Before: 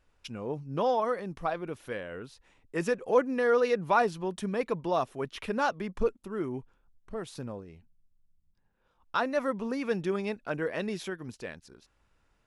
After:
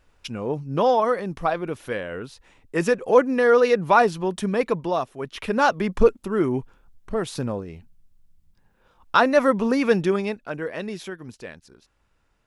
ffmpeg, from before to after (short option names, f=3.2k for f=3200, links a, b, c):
-af "volume=19.5dB,afade=t=out:st=4.69:d=0.43:silence=0.398107,afade=t=in:st=5.12:d=0.78:silence=0.266073,afade=t=out:st=9.86:d=0.6:silence=0.334965"